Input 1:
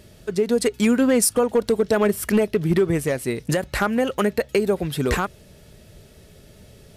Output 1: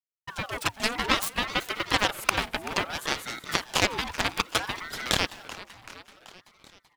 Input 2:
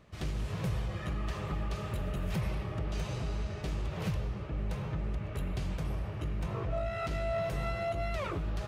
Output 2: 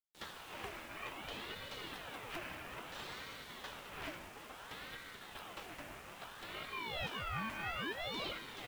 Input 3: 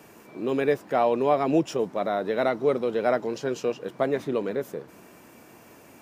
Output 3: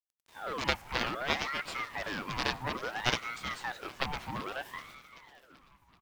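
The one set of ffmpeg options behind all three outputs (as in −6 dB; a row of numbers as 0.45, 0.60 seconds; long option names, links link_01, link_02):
-filter_complex "[0:a]highpass=210,agate=range=-33dB:threshold=-42dB:ratio=3:detection=peak,equalizer=frequency=1900:width_type=o:width=1.2:gain=12.5,acrusher=bits=7:mix=0:aa=0.000001,aeval=exprs='0.891*(cos(1*acos(clip(val(0)/0.891,-1,1)))-cos(1*PI/2))+0.282*(cos(2*acos(clip(val(0)/0.891,-1,1)))-cos(2*PI/2))+0.2*(cos(7*acos(clip(val(0)/0.891,-1,1)))-cos(7*PI/2))':channel_layout=same,asplit=2[link_01][link_02];[link_02]asplit=6[link_03][link_04][link_05][link_06][link_07][link_08];[link_03]adelay=383,afreqshift=35,volume=-15.5dB[link_09];[link_04]adelay=766,afreqshift=70,volume=-19.9dB[link_10];[link_05]adelay=1149,afreqshift=105,volume=-24.4dB[link_11];[link_06]adelay=1532,afreqshift=140,volume=-28.8dB[link_12];[link_07]adelay=1915,afreqshift=175,volume=-33.2dB[link_13];[link_08]adelay=2298,afreqshift=210,volume=-37.7dB[link_14];[link_09][link_10][link_11][link_12][link_13][link_14]amix=inputs=6:normalize=0[link_15];[link_01][link_15]amix=inputs=2:normalize=0,aeval=exprs='val(0)*sin(2*PI*1100*n/s+1100*0.6/0.6*sin(2*PI*0.6*n/s))':channel_layout=same,volume=-1.5dB"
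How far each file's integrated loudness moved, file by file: −6.5, −8.5, −8.5 LU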